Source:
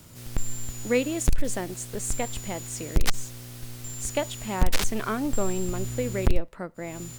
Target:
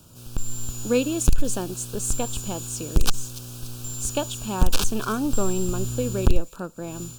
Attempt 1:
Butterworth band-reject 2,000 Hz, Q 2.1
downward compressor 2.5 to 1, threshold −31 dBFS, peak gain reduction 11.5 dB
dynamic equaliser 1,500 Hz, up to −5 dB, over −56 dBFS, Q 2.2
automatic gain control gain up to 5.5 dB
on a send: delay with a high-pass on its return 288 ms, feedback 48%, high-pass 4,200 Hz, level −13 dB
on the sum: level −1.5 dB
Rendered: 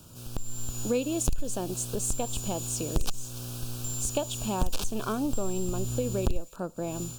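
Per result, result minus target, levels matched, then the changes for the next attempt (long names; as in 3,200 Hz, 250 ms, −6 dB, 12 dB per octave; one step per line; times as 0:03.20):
downward compressor: peak gain reduction +11.5 dB; 2,000 Hz band −3.0 dB
remove: downward compressor 2.5 to 1, threshold −31 dBFS, peak gain reduction 11.5 dB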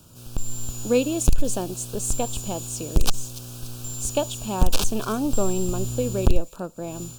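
2,000 Hz band −2.5 dB
change: dynamic equaliser 650 Hz, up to −5 dB, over −56 dBFS, Q 2.2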